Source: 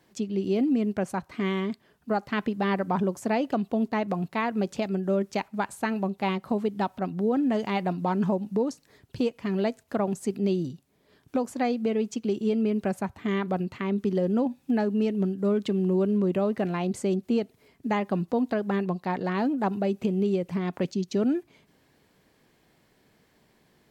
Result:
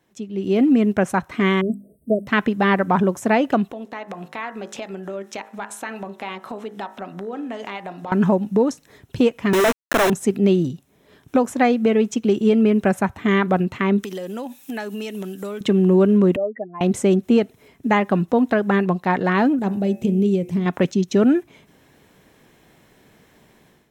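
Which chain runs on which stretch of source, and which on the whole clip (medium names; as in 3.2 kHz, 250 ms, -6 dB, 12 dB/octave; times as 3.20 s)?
1.61–2.27 s: brick-wall FIR band-stop 690–7900 Hz + hum notches 50/100/150/200/250/300 Hz
3.72–8.12 s: frequency weighting A + compression 3:1, threshold -39 dBFS + de-hum 52.6 Hz, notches 39
9.53–10.10 s: high-pass 260 Hz 24 dB/octave + companded quantiser 2-bit
14.03–15.61 s: tilt EQ +4.5 dB/octave + compression 4:1, threshold -36 dBFS
16.36–16.81 s: spectral contrast enhancement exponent 2.7 + high-pass 680 Hz
19.59–20.66 s: peaking EQ 1.2 kHz -14 dB 2.4 oct + de-hum 71.73 Hz, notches 37
whole clip: band-stop 4.6 kHz, Q 5.4; dynamic bell 1.6 kHz, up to +5 dB, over -44 dBFS, Q 1.3; level rider gain up to 13 dB; trim -3 dB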